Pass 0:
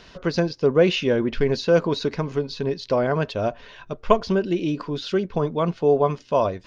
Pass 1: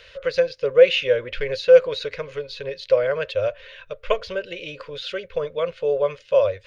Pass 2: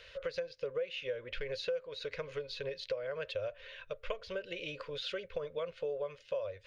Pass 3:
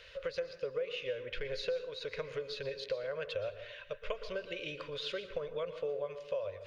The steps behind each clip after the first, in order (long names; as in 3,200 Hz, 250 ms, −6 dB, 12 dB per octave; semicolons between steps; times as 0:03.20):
drawn EQ curve 100 Hz 0 dB, 210 Hz −20 dB, 350 Hz −15 dB, 530 Hz +13 dB, 760 Hz −12 dB, 1,400 Hz +3 dB, 2,300 Hz +9 dB, 3,800 Hz +5 dB, 5,600 Hz −3 dB, 9,700 Hz +7 dB; level −3.5 dB
downward compressor 8 to 1, threshold −27 dBFS, peak gain reduction 20 dB; level −7 dB
dense smooth reverb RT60 0.81 s, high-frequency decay 0.6×, pre-delay 105 ms, DRR 10.5 dB